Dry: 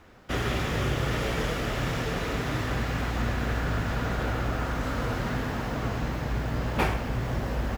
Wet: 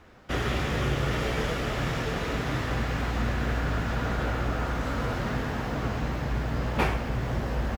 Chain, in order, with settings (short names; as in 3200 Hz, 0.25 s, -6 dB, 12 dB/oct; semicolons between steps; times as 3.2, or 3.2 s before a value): high shelf 8900 Hz -5.5 dB; doubler 14 ms -11.5 dB